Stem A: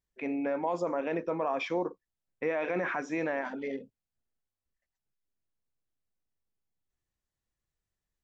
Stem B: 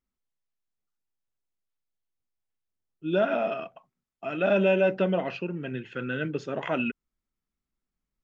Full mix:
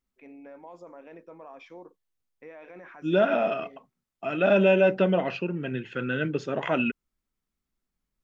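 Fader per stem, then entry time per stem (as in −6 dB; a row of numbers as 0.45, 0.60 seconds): −15.0, +2.5 decibels; 0.00, 0.00 seconds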